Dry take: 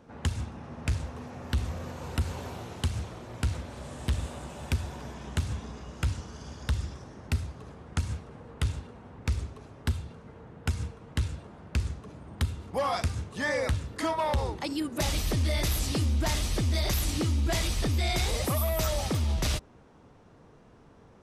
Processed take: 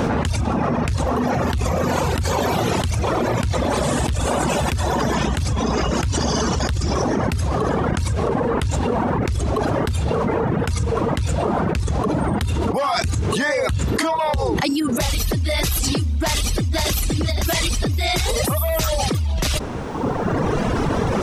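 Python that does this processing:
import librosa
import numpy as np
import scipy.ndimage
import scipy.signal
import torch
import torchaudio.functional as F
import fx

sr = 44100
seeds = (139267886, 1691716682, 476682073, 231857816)

y = fx.echo_throw(x, sr, start_s=16.17, length_s=0.84, ms=520, feedback_pct=15, wet_db=-0.5)
y = fx.edit(y, sr, fx.reverse_span(start_s=6.18, length_s=0.41), tone=tone)
y = fx.dereverb_blind(y, sr, rt60_s=1.2)
y = fx.env_flatten(y, sr, amount_pct=100)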